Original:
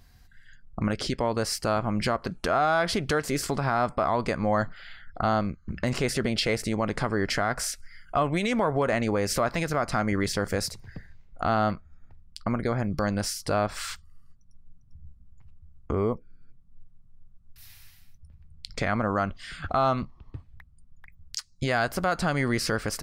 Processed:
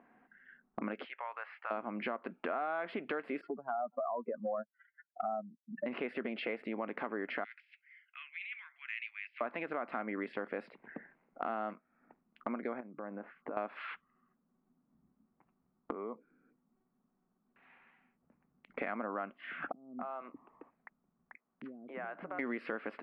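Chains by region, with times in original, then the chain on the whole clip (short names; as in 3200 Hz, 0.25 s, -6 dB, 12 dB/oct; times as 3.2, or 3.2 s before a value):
1.04–1.71 Bessel high-pass 1400 Hz, order 4 + air absorption 130 m
3.41–5.86 spectral contrast raised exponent 3 + BPF 260–5600 Hz
7.44–9.41 steep high-pass 2300 Hz + negative-ratio compressor -39 dBFS
12.8–13.57 LPF 1600 Hz + compressor 5:1, threshold -36 dBFS
15.92–18.7 dynamic EQ 1200 Hz, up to +4 dB, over -48 dBFS, Q 1.7 + compressor 2:1, threshold -39 dBFS
19.72–22.39 compressor 5:1, threshold -38 dBFS + bands offset in time lows, highs 0.27 s, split 340 Hz
whole clip: elliptic band-pass 240–2600 Hz, stop band 40 dB; low-pass opened by the level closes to 1300 Hz, open at -24.5 dBFS; compressor 3:1, threshold -44 dBFS; gain +4.5 dB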